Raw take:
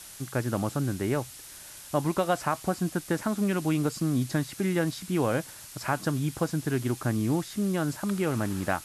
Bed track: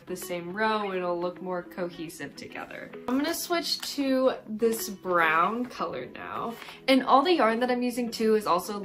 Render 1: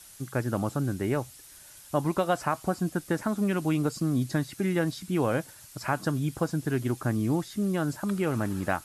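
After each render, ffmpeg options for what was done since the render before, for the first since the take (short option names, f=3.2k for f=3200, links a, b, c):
-af "afftdn=nr=7:nf=-46"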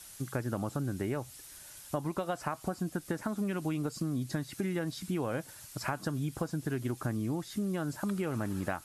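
-af "acompressor=threshold=-30dB:ratio=6"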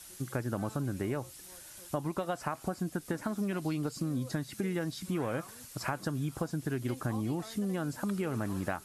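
-filter_complex "[1:a]volume=-27dB[a];[0:a][a]amix=inputs=2:normalize=0"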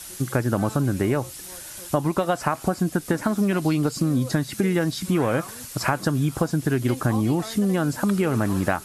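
-af "volume=11.5dB"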